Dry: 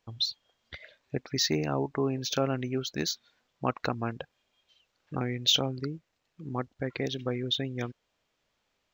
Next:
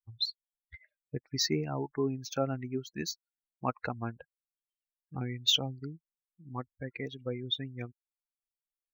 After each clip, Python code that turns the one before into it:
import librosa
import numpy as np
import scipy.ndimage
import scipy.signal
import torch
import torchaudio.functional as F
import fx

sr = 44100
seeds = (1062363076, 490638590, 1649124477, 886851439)

y = fx.bin_expand(x, sr, power=2.0)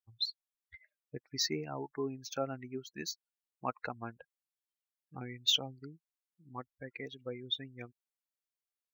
y = fx.low_shelf(x, sr, hz=240.0, db=-9.5)
y = y * librosa.db_to_amplitude(-2.5)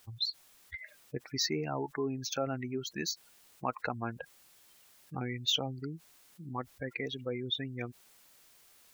y = fx.env_flatten(x, sr, amount_pct=50)
y = y * librosa.db_to_amplitude(-2.0)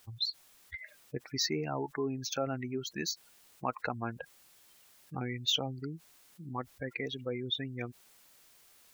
y = x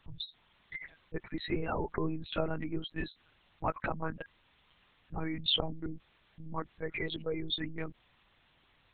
y = fx.lpc_monotone(x, sr, seeds[0], pitch_hz=160.0, order=8)
y = y * librosa.db_to_amplitude(1.5)